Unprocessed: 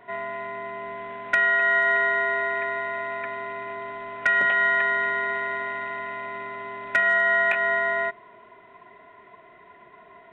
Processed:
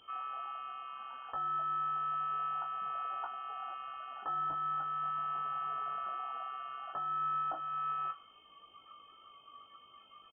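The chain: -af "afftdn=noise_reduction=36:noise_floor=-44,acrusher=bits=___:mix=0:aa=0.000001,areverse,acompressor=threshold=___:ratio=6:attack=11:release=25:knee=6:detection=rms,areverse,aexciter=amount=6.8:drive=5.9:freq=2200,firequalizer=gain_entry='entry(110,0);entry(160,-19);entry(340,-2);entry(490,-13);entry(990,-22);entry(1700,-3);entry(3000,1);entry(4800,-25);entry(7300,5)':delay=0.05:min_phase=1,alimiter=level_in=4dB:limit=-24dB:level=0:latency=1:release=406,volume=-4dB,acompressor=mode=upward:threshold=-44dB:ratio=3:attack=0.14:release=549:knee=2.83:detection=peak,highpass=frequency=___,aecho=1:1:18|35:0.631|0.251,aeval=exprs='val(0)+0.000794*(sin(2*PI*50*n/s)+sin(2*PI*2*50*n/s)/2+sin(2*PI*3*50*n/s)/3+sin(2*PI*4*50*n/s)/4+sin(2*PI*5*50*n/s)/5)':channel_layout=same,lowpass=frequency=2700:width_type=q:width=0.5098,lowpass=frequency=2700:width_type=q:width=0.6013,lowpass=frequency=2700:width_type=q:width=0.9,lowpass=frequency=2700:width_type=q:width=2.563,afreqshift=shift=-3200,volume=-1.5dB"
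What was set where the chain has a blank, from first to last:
10, -37dB, 880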